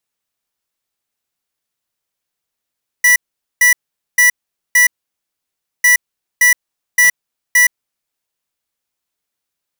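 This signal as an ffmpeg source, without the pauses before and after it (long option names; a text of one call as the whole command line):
ffmpeg -f lavfi -i "aevalsrc='0.355*(2*lt(mod(1960*t,1),0.5)-1)*clip(min(mod(mod(t,2.8),0.57),0.12-mod(mod(t,2.8),0.57))/0.005,0,1)*lt(mod(t,2.8),2.28)':duration=5.6:sample_rate=44100" out.wav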